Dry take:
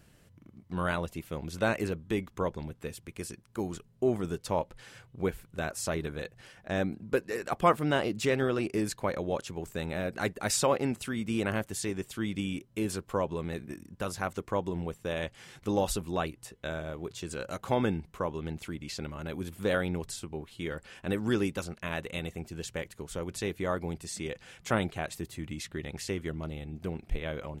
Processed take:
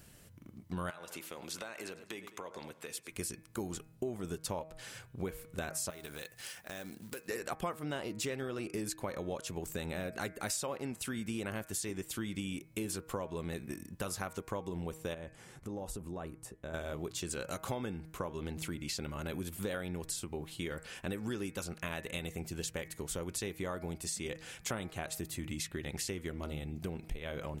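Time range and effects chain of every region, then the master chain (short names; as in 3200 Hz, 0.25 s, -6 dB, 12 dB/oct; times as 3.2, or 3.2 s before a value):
0.9–3.12 weighting filter A + feedback echo 0.102 s, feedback 43%, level -20.5 dB + compressor 12:1, threshold -40 dBFS
5.9–7.28 tilt +2.5 dB/oct + compressor, threshold -42 dBFS + short-mantissa float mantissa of 2-bit
15.14–16.74 bell 3700 Hz -13 dB 2.3 oct + compressor 4:1, threshold -40 dBFS + Bessel low-pass 8200 Hz
whole clip: high shelf 5700 Hz +9.5 dB; de-hum 158.4 Hz, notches 16; compressor 6:1, threshold -36 dBFS; gain +1 dB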